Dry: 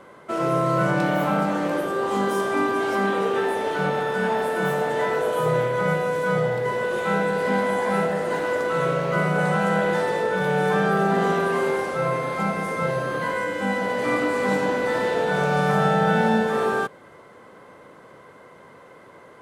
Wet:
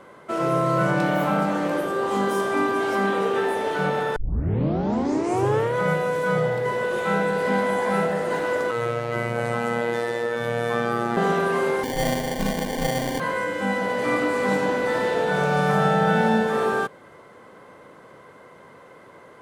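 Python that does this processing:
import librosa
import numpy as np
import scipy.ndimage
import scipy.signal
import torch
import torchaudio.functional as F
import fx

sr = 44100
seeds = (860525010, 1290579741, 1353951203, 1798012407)

y = fx.robotise(x, sr, hz=118.0, at=(8.71, 11.17))
y = fx.sample_hold(y, sr, seeds[0], rate_hz=1300.0, jitter_pct=0, at=(11.83, 13.2))
y = fx.edit(y, sr, fx.tape_start(start_s=4.16, length_s=1.6), tone=tone)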